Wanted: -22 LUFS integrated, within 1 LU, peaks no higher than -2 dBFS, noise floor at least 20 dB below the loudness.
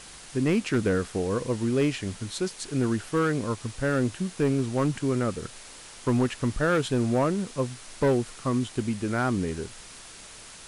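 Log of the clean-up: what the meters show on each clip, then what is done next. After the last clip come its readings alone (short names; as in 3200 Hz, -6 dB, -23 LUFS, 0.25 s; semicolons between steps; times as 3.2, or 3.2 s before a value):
clipped 1.2%; flat tops at -17.5 dBFS; noise floor -46 dBFS; noise floor target -47 dBFS; loudness -27.0 LUFS; peak -17.5 dBFS; loudness target -22.0 LUFS
-> clip repair -17.5 dBFS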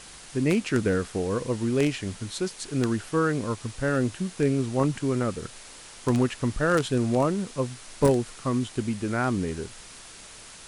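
clipped 0.0%; noise floor -46 dBFS; noise floor target -47 dBFS
-> denoiser 6 dB, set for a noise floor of -46 dBFS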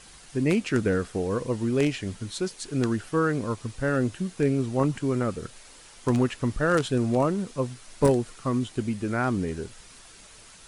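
noise floor -50 dBFS; loudness -27.0 LUFS; peak -8.5 dBFS; loudness target -22.0 LUFS
-> gain +5 dB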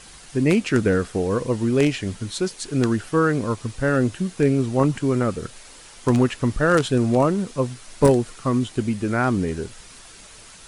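loudness -22.0 LUFS; peak -3.5 dBFS; noise floor -45 dBFS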